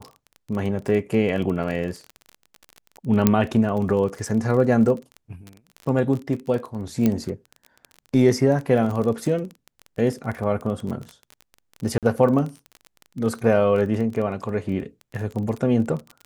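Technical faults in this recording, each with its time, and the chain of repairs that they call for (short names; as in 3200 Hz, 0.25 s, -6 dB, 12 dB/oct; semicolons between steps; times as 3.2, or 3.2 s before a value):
crackle 22/s -28 dBFS
3.27 pop -2 dBFS
7.06 pop -8 dBFS
11.98–12.03 gap 47 ms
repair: de-click; interpolate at 11.98, 47 ms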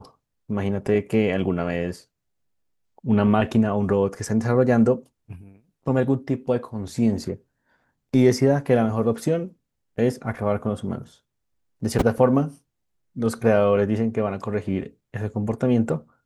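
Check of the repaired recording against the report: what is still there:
none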